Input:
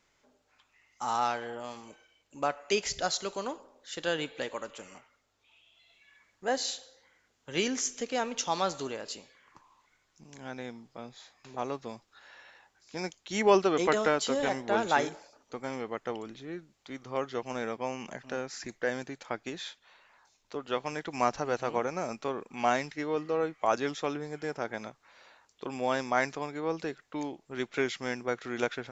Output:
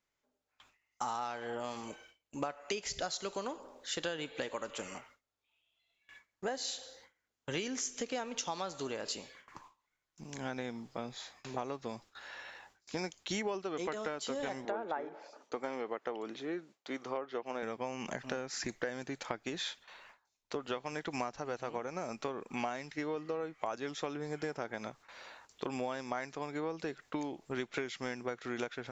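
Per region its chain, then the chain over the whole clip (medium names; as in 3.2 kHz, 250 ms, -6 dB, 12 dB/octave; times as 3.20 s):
14.65–17.63 s: high-pass 360 Hz + low-pass that closes with the level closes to 1.5 kHz, closed at -26.5 dBFS + tilt EQ -1.5 dB/octave
whole clip: gate with hold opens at -50 dBFS; compression 12:1, threshold -39 dBFS; trim +5.5 dB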